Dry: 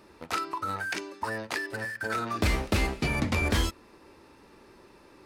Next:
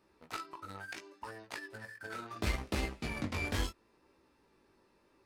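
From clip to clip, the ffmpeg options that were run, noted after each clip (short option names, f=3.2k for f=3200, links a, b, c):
-af "flanger=delay=15.5:depth=5.4:speed=0.72,aeval=exprs='0.158*(cos(1*acos(clip(val(0)/0.158,-1,1)))-cos(1*PI/2))+0.0126*(cos(3*acos(clip(val(0)/0.158,-1,1)))-cos(3*PI/2))+0.00794*(cos(7*acos(clip(val(0)/0.158,-1,1)))-cos(7*PI/2))':c=same,volume=-4dB"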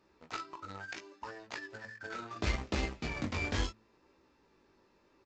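-af "aresample=16000,acrusher=bits=6:mode=log:mix=0:aa=0.000001,aresample=44100,bandreject=f=109.6:t=h:w=4,bandreject=f=219.2:t=h:w=4,volume=1dB"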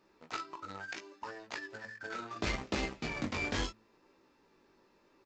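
-af "equalizer=f=70:t=o:w=0.93:g=-11,volume=1dB"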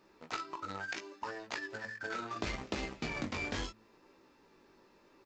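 -af "acompressor=threshold=-37dB:ratio=6,volume=3.5dB"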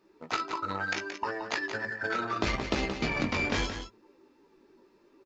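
-af "afftdn=nr=12:nf=-54,aecho=1:1:175:0.376,volume=8dB"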